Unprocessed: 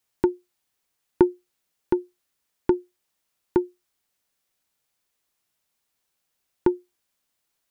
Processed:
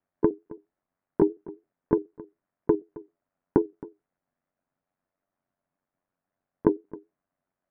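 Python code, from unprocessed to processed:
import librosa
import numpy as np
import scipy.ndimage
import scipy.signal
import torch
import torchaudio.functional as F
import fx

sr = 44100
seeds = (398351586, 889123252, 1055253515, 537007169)

p1 = fx.pitch_trill(x, sr, semitones=1.0, every_ms=76)
p2 = scipy.signal.sosfilt(scipy.signal.butter(4, 1700.0, 'lowpass', fs=sr, output='sos'), p1)
p3 = fx.level_steps(p2, sr, step_db=14)
p4 = p2 + F.gain(torch.from_numpy(p3), 1.0).numpy()
p5 = fx.small_body(p4, sr, hz=(210.0, 630.0), ring_ms=45, db=11)
p6 = p5 * np.sin(2.0 * np.pi * 46.0 * np.arange(len(p5)) / sr)
p7 = p6 + fx.echo_single(p6, sr, ms=268, db=-20.0, dry=0)
y = F.gain(torch.from_numpy(p7), -1.5).numpy()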